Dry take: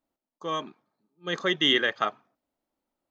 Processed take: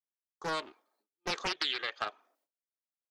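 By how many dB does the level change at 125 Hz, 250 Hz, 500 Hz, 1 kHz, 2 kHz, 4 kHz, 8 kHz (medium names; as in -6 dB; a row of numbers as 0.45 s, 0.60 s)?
-9.5 dB, -14.5 dB, -10.5 dB, -6.0 dB, -9.0 dB, -9.0 dB, no reading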